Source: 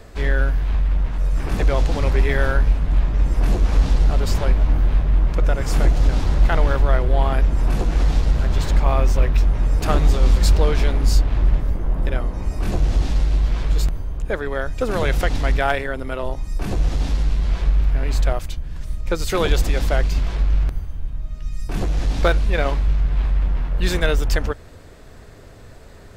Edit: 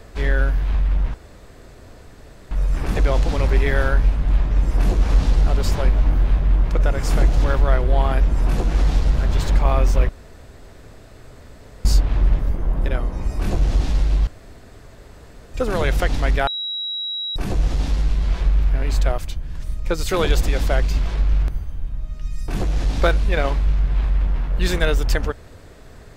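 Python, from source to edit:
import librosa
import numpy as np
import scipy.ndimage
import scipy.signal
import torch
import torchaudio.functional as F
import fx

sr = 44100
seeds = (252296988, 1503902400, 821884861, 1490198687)

y = fx.edit(x, sr, fx.insert_room_tone(at_s=1.14, length_s=1.37),
    fx.cut(start_s=6.07, length_s=0.58),
    fx.room_tone_fill(start_s=9.3, length_s=1.76),
    fx.room_tone_fill(start_s=13.48, length_s=1.27),
    fx.bleep(start_s=15.68, length_s=0.89, hz=3870.0, db=-23.5), tone=tone)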